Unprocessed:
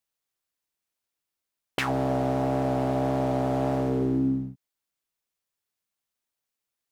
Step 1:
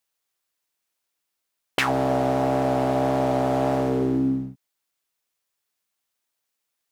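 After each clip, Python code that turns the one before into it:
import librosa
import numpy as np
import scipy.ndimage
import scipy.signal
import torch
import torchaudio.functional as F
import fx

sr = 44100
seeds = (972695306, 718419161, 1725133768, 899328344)

y = fx.low_shelf(x, sr, hz=280.0, db=-7.0)
y = y * 10.0 ** (6.0 / 20.0)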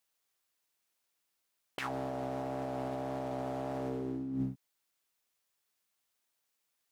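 y = fx.over_compress(x, sr, threshold_db=-29.0, ratio=-1.0)
y = y * 10.0 ** (-8.0 / 20.0)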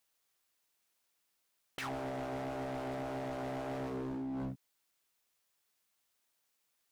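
y = np.clip(x, -10.0 ** (-38.5 / 20.0), 10.0 ** (-38.5 / 20.0))
y = y * 10.0 ** (2.0 / 20.0)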